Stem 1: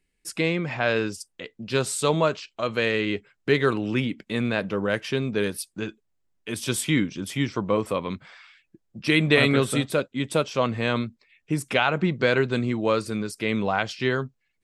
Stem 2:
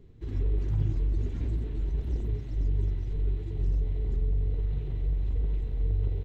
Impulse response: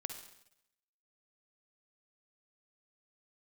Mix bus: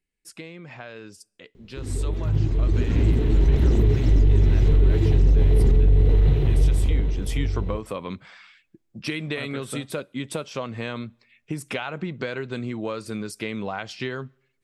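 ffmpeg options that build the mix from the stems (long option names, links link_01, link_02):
-filter_complex "[0:a]acompressor=threshold=-26dB:ratio=10,afade=type=in:start_time=6.8:duration=0.64:silence=0.334965,asplit=2[link_01][link_02];[link_02]volume=-22.5dB[link_03];[1:a]dynaudnorm=framelen=210:gausssize=13:maxgain=15dB,lowshelf=frequency=75:gain=-8,adelay=1550,volume=2.5dB,asplit=2[link_04][link_05];[link_05]volume=-6dB[link_06];[2:a]atrim=start_sample=2205[link_07];[link_03][link_06]amix=inputs=2:normalize=0[link_08];[link_08][link_07]afir=irnorm=-1:irlink=0[link_09];[link_01][link_04][link_09]amix=inputs=3:normalize=0,alimiter=limit=-10dB:level=0:latency=1:release=19"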